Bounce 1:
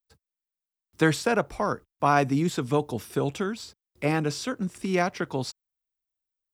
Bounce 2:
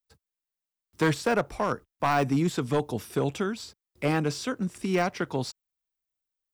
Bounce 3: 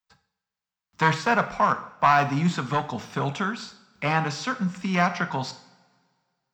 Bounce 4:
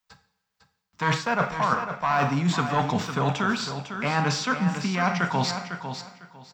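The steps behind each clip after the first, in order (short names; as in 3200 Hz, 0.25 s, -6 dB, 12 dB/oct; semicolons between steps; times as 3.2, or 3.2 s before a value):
de-esser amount 75%; overloaded stage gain 17.5 dB
EQ curve 120 Hz 0 dB, 180 Hz +11 dB, 360 Hz -5 dB, 940 Hz +14 dB, 7200 Hz +5 dB, 11000 Hz -28 dB, 15000 Hz -1 dB; two-slope reverb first 0.59 s, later 2 s, from -19 dB, DRR 8 dB; gain -5 dB
reverse; compressor 12:1, threshold -27 dBFS, peak gain reduction 14 dB; reverse; feedback echo 0.502 s, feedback 21%, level -9 dB; gain +7 dB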